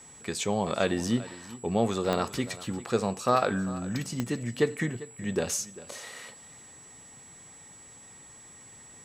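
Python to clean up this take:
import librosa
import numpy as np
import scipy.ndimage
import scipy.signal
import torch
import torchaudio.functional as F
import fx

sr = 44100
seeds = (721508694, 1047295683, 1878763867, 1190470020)

y = fx.fix_declick_ar(x, sr, threshold=10.0)
y = fx.notch(y, sr, hz=7800.0, q=30.0)
y = fx.fix_echo_inverse(y, sr, delay_ms=397, level_db=-17.5)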